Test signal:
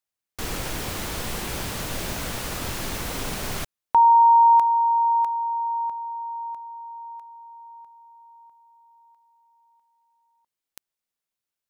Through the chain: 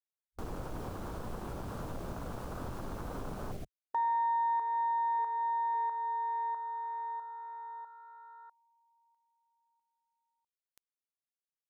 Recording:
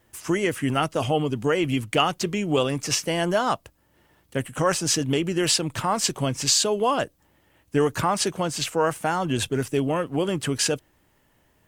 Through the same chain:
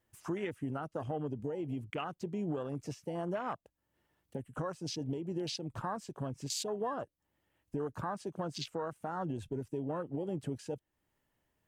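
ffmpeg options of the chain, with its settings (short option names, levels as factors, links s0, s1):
-af "acompressor=threshold=0.0316:ratio=6:attack=0.36:release=610:knee=6:detection=peak,afwtdn=0.01"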